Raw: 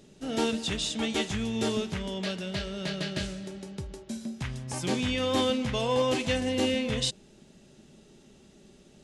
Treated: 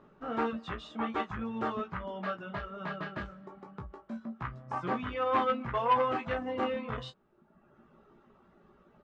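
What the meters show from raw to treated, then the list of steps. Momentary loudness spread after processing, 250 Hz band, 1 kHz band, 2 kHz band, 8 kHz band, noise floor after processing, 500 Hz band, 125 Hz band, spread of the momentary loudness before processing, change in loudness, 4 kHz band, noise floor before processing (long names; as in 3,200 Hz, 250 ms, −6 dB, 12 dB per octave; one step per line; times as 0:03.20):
15 LU, −7.5 dB, +5.5 dB, −4.0 dB, below −30 dB, −65 dBFS, −4.5 dB, −8.5 dB, 12 LU, −4.0 dB, −16.0 dB, −56 dBFS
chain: reverb reduction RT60 1.1 s
low-pass with resonance 1,200 Hz, resonance Q 4.4
tilt shelving filter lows −4 dB, about 710 Hz
ambience of single reflections 17 ms −5 dB, 31 ms −12 dB
saturating transformer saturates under 860 Hz
level −3 dB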